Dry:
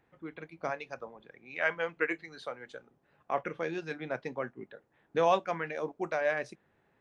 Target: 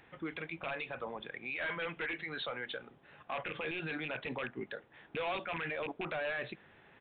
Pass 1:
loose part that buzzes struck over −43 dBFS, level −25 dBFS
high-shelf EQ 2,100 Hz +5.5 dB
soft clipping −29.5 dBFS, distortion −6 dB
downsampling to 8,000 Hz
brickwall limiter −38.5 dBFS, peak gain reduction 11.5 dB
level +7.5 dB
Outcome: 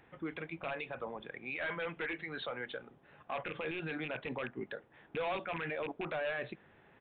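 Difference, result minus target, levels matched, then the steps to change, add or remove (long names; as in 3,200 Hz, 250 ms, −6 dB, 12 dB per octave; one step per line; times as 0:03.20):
4,000 Hz band −2.5 dB
change: high-shelf EQ 2,100 Hz +14 dB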